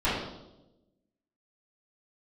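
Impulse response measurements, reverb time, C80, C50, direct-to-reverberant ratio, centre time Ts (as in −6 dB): 1.0 s, 4.5 dB, 1.0 dB, −14.5 dB, 63 ms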